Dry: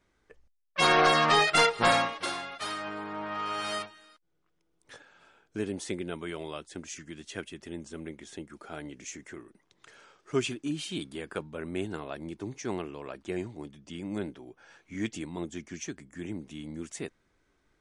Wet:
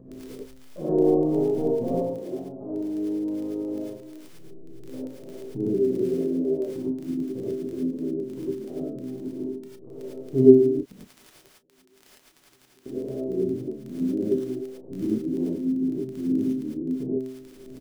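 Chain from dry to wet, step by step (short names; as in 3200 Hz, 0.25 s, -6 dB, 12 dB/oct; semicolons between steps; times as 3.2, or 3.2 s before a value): FFT order left unsorted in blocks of 16 samples; inverse Chebyshev low-pass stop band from 1800 Hz, stop band 60 dB; bell 290 Hz +11 dB 2.8 oct; upward compressor, threshold -25 dBFS; resonator 130 Hz, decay 0.87 s, harmonics all, mix 90%; 10.7–12.86 flipped gate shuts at -40 dBFS, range -41 dB; crackle 17/s -42 dBFS; doubler 32 ms -13 dB; non-linear reverb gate 0.13 s rising, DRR -7 dB; gain +7 dB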